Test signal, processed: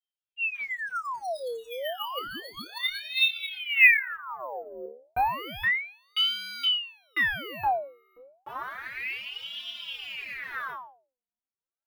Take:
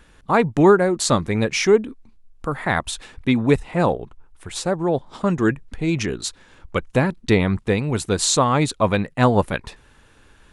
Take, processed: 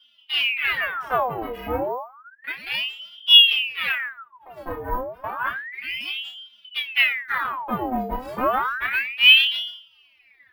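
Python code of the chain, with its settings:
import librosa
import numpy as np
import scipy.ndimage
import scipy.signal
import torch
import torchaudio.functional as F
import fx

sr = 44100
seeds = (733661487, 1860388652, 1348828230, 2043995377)

p1 = fx.lower_of_two(x, sr, delay_ms=0.42)
p2 = scipy.signal.sosfilt(scipy.signal.butter(2, 1100.0, 'lowpass', fs=sr, output='sos'), p1)
p3 = fx.fold_sine(p2, sr, drive_db=5, ceiling_db=-5.0)
p4 = p2 + (p3 * 10.0 ** (-6.5 / 20.0))
p5 = fx.stiff_resonator(p4, sr, f0_hz=250.0, decay_s=0.31, stiffness=0.008)
p6 = p5 + fx.room_flutter(p5, sr, wall_m=4.8, rt60_s=0.32, dry=0)
p7 = np.repeat(p6[::3], 3)[:len(p6)]
p8 = fx.ring_lfo(p7, sr, carrier_hz=1800.0, swing_pct=75, hz=0.31)
y = p8 * 10.0 ** (4.5 / 20.0)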